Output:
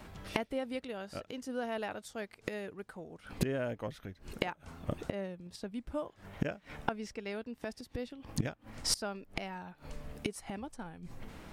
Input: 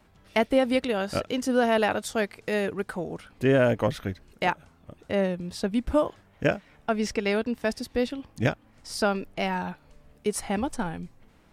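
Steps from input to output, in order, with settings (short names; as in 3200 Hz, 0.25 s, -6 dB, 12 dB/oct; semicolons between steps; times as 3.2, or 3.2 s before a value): flipped gate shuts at -27 dBFS, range -24 dB; gain +9.5 dB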